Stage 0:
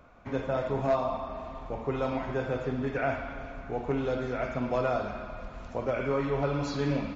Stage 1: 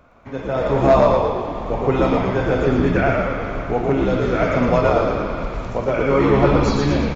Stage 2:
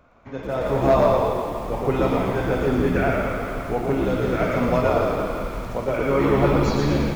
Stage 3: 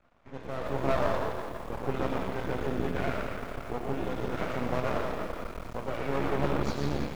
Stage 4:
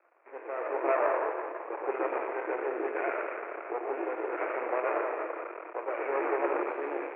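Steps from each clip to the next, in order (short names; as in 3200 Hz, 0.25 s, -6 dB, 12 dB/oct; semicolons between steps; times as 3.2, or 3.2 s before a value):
AGC gain up to 9 dB; tremolo 1.1 Hz, depth 35%; on a send: frequency-shifting echo 0.115 s, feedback 58%, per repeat -75 Hz, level -3 dB; on the sum: gain +3.5 dB
lo-fi delay 0.167 s, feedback 55%, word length 6-bit, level -9 dB; gain -4 dB
half-wave rectifier; gain -6.5 dB
Chebyshev band-pass 330–2500 Hz, order 5; gain +2.5 dB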